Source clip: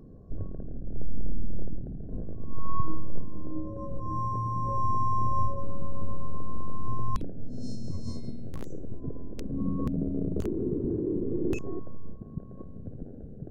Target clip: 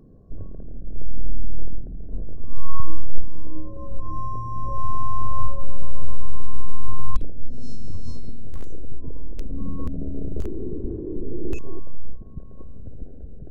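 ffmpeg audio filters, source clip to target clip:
-af "asubboost=boost=5:cutoff=60,volume=0.891"

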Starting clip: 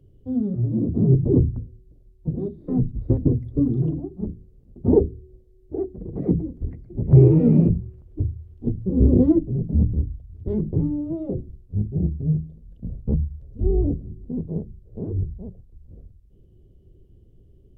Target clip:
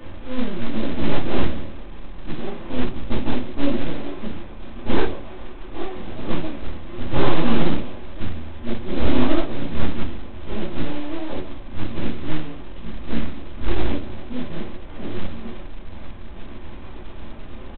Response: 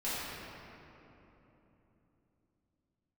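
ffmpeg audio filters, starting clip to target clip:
-filter_complex "[0:a]aeval=exprs='val(0)+0.5*0.075*sgn(val(0))':c=same,asplit=4[s0][s1][s2][s3];[s1]adelay=137,afreqshift=130,volume=0.15[s4];[s2]adelay=274,afreqshift=260,volume=0.0537[s5];[s3]adelay=411,afreqshift=390,volume=0.0195[s6];[s0][s4][s5][s6]amix=inputs=4:normalize=0,aeval=exprs='0.75*(cos(1*acos(clip(val(0)/0.75,-1,1)))-cos(1*PI/2))+0.119*(cos(3*acos(clip(val(0)/0.75,-1,1)))-cos(3*PI/2))+0.0473*(cos(4*acos(clip(val(0)/0.75,-1,1)))-cos(4*PI/2))+0.188*(cos(6*acos(clip(val(0)/0.75,-1,1)))-cos(6*PI/2))':c=same,asplit=2[s7][s8];[s8]asoftclip=type=tanh:threshold=0.158,volume=0.376[s9];[s7][s9]amix=inputs=2:normalize=0[s10];[1:a]atrim=start_sample=2205,atrim=end_sample=3969,asetrate=52920,aresample=44100[s11];[s10][s11]afir=irnorm=-1:irlink=0,aresample=8000,acrusher=bits=6:mode=log:mix=0:aa=0.000001,aresample=44100,volume=0.447"

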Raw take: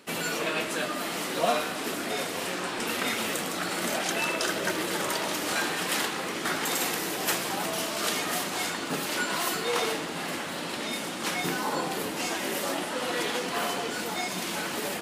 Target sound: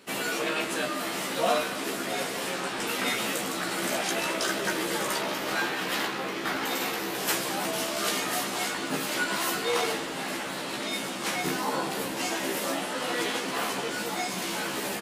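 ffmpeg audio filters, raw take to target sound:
-filter_complex "[0:a]asettb=1/sr,asplit=3[s0][s1][s2];[s0]atrim=end=5.214[s3];[s1]atrim=start=5.21:end=7.15,asetpts=PTS-STARTPTS,afade=t=in:d=0.004:c=qsin,afade=t=out:st=1.936:d=0.004:c=qsin,equalizer=f=8800:t=o:w=1.2:g=-8.5[s4];[s2]atrim=start=7.146[s5];[s3][s4]acrossfade=d=0.004:c1=hsin:c2=qsin[s6];[s6][s5]acrossfade=d=0.004:c1=qsin:c2=hsin,acontrast=35,asplit=2[s7][s8];[s8]adelay=15,volume=0.75[s9];[s7][s9]amix=inputs=2:normalize=0,volume=0.447"

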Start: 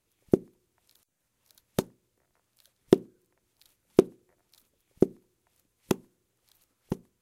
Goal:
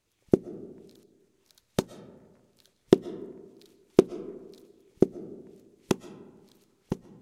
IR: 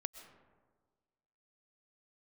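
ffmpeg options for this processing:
-filter_complex "[0:a]asplit=2[s0][s1];[1:a]atrim=start_sample=2205,lowpass=7000,highshelf=f=4900:g=9[s2];[s1][s2]afir=irnorm=-1:irlink=0,volume=1[s3];[s0][s3]amix=inputs=2:normalize=0,volume=0.631"

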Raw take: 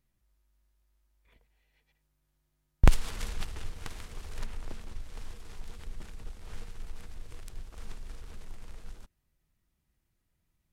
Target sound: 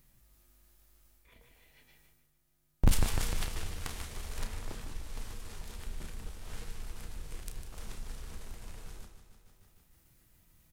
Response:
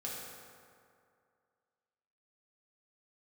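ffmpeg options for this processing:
-filter_complex "[0:a]highshelf=f=8200:g=9.5,asplit=2[s0][s1];[s1]adelay=32,volume=0.398[s2];[s0][s2]amix=inputs=2:normalize=0,asplit=2[s3][s4];[s4]aecho=0:1:151|302|453|604|755|906|1057:0.316|0.19|0.114|0.0683|0.041|0.0246|0.0148[s5];[s3][s5]amix=inputs=2:normalize=0,asoftclip=type=hard:threshold=0.141,areverse,acompressor=mode=upward:threshold=0.00224:ratio=2.5,areverse,flanger=delay=5.8:depth=9.9:regen=77:speed=0.6:shape=triangular,volume=1.78"

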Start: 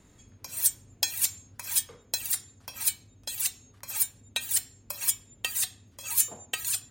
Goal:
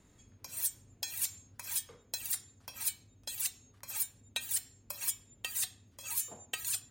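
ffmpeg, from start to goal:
-af "alimiter=limit=0.178:level=0:latency=1:release=100,volume=0.531"

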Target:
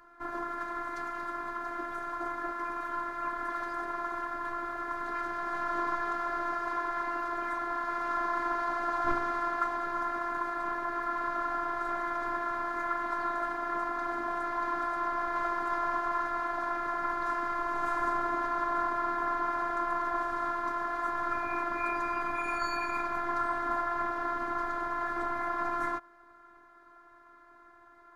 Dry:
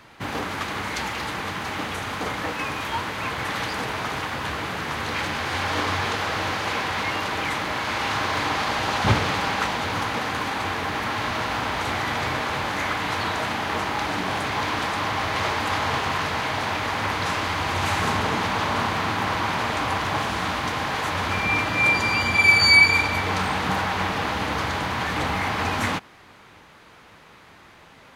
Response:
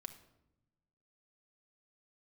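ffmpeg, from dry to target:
-af "highshelf=f=2000:t=q:w=3:g=-11.5,afftfilt=real='hypot(re,im)*cos(PI*b)':imag='0':win_size=512:overlap=0.75,volume=0.501"

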